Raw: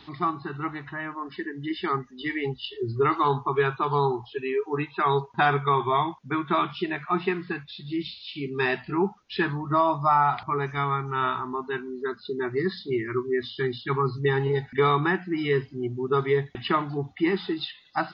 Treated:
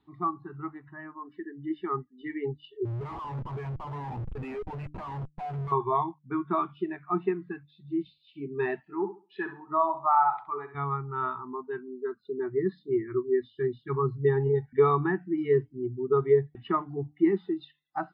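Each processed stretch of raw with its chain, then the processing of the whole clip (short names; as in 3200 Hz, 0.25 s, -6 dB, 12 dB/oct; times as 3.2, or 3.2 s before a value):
2.85–5.72 fixed phaser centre 1400 Hz, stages 6 + Schmitt trigger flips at -42 dBFS
8.8–10.75 HPF 490 Hz 6 dB/oct + flutter echo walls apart 11.5 m, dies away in 0.48 s
whole clip: LPF 1800 Hz 6 dB/oct; de-hum 148.8 Hz, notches 2; spectral expander 1.5:1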